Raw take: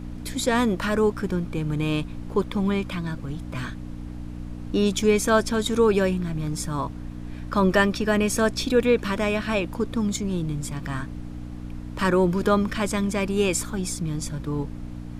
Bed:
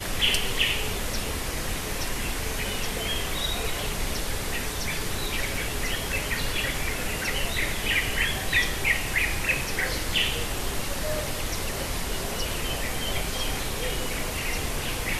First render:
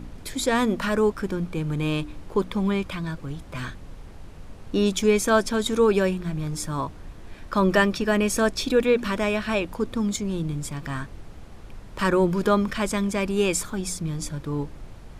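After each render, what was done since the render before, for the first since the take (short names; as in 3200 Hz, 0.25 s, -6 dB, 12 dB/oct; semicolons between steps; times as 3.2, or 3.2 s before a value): de-hum 60 Hz, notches 5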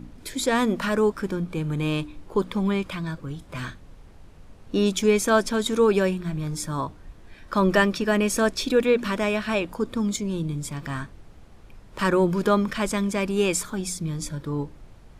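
noise print and reduce 6 dB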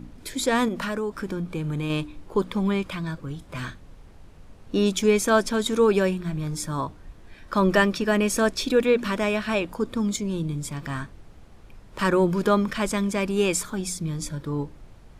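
0.68–1.9 compressor, threshold -24 dBFS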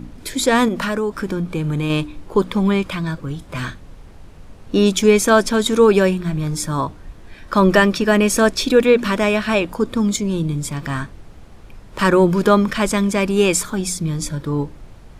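gain +7 dB; limiter -2 dBFS, peak gain reduction 2 dB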